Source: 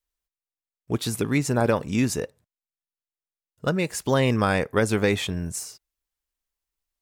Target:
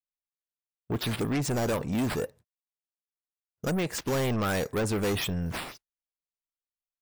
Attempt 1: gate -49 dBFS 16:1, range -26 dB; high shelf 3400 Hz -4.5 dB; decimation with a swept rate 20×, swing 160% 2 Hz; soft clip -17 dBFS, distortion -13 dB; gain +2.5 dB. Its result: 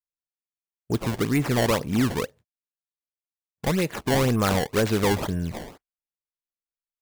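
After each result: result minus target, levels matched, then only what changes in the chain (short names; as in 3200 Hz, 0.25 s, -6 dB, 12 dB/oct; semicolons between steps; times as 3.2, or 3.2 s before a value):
decimation with a swept rate: distortion +11 dB; soft clip: distortion -8 dB
change: decimation with a swept rate 4×, swing 160% 2 Hz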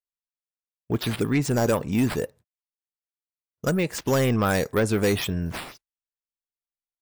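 soft clip: distortion -8 dB
change: soft clip -27 dBFS, distortion -6 dB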